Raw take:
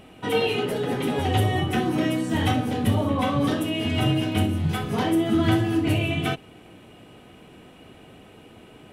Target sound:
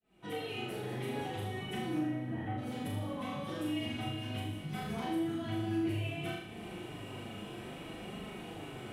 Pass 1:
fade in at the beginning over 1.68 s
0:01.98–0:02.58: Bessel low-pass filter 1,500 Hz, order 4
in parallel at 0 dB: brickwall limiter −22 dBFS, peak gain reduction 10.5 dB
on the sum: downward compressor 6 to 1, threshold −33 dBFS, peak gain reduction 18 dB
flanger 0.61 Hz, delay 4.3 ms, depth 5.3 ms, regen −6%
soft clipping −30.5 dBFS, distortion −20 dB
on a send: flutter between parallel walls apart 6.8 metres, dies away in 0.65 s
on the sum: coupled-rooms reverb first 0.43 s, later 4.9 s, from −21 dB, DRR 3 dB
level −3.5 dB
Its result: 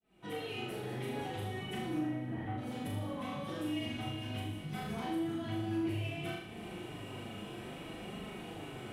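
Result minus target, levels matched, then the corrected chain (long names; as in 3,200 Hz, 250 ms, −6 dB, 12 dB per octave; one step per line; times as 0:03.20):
soft clipping: distortion +17 dB
fade in at the beginning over 1.68 s
0:01.98–0:02.58: Bessel low-pass filter 1,500 Hz, order 4
in parallel at 0 dB: brickwall limiter −22 dBFS, peak gain reduction 10.5 dB
on the sum: downward compressor 6 to 1, threshold −33 dBFS, peak gain reduction 18 dB
flanger 0.61 Hz, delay 4.3 ms, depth 5.3 ms, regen −6%
soft clipping −21 dBFS, distortion −36 dB
on a send: flutter between parallel walls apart 6.8 metres, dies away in 0.65 s
on the sum: coupled-rooms reverb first 0.43 s, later 4.9 s, from −21 dB, DRR 3 dB
level −3.5 dB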